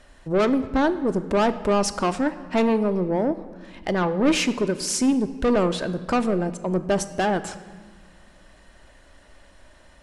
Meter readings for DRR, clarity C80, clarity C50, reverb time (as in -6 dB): 10.0 dB, 15.0 dB, 14.0 dB, 1.5 s